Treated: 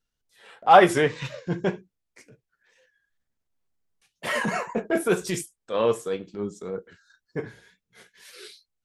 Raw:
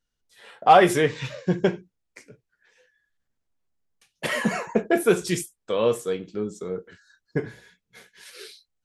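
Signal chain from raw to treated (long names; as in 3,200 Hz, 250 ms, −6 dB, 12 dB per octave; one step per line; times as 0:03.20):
tape wow and flutter 57 cents
transient designer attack −8 dB, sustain −3 dB
dynamic equaliser 1,000 Hz, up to +4 dB, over −39 dBFS, Q 0.88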